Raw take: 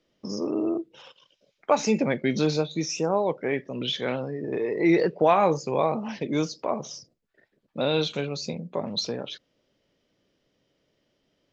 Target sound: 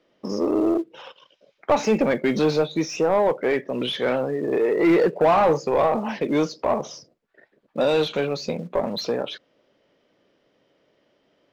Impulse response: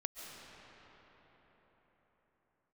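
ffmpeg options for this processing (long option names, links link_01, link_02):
-filter_complex "[0:a]acrusher=bits=7:mode=log:mix=0:aa=0.000001,asplit=2[link_01][link_02];[link_02]highpass=frequency=720:poles=1,volume=20dB,asoftclip=type=tanh:threshold=-8dB[link_03];[link_01][link_03]amix=inputs=2:normalize=0,lowpass=frequency=1000:poles=1,volume=-6dB"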